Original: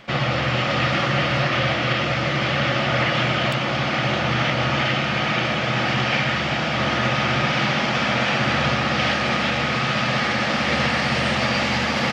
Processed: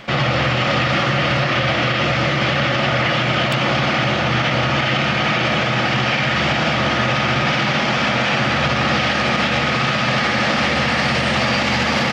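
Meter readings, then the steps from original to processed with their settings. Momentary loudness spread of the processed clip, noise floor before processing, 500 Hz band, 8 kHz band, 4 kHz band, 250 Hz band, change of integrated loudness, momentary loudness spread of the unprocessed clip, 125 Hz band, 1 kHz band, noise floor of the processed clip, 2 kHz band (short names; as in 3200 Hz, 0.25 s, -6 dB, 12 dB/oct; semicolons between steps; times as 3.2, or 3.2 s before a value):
1 LU, -23 dBFS, +3.5 dB, +3.5 dB, +3.5 dB, +3.5 dB, +3.5 dB, 2 LU, +3.0 dB, +3.5 dB, -19 dBFS, +3.5 dB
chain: limiter -16.5 dBFS, peak gain reduction 9 dB; gain +7.5 dB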